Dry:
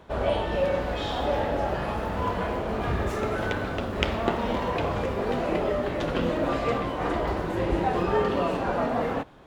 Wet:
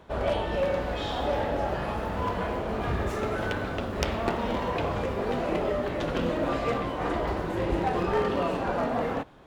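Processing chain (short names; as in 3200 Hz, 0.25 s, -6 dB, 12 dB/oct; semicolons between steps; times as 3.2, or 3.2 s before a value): one-sided fold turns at -18 dBFS; gain -1.5 dB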